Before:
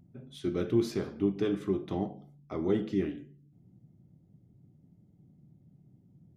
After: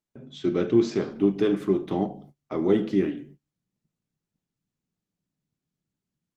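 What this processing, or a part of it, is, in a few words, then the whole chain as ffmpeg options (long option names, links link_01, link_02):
video call: -af "highpass=160,dynaudnorm=framelen=110:gausssize=3:maxgain=11dB,agate=range=-31dB:threshold=-44dB:ratio=16:detection=peak,volume=-3.5dB" -ar 48000 -c:a libopus -b:a 20k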